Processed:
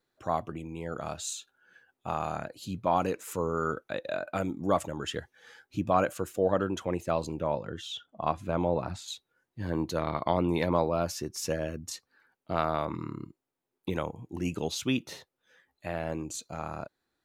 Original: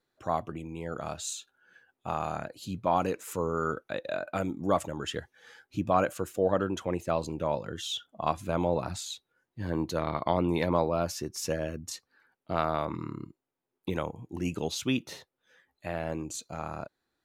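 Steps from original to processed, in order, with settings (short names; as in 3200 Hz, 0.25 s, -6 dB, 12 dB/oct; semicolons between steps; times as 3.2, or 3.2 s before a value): 7.4–9.08 high shelf 4500 Hz -11.5 dB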